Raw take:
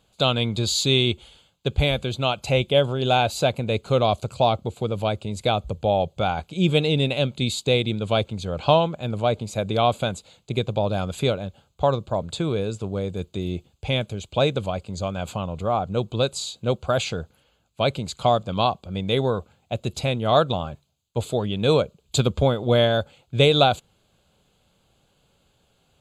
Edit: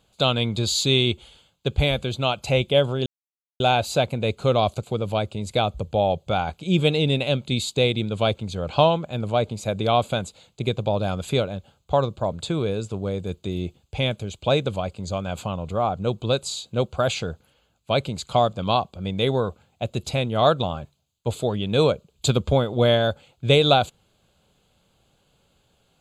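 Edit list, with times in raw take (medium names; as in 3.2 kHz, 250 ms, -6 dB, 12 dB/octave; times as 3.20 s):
3.06 s: insert silence 0.54 s
4.29–4.73 s: delete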